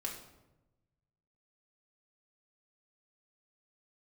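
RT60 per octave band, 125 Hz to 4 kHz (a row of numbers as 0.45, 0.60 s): 1.8, 1.3, 1.1, 0.90, 0.75, 0.60 s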